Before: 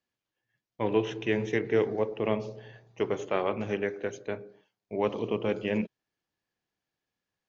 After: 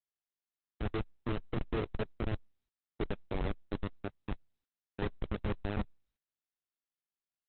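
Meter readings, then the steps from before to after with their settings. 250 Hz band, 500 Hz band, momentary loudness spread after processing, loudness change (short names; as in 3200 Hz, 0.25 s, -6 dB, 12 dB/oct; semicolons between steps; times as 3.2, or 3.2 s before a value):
-7.5 dB, -13.0 dB, 8 LU, -9.0 dB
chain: reverse echo 48 ms -21.5 dB; Schmitt trigger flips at -22.5 dBFS; gain +1 dB; Opus 8 kbps 48000 Hz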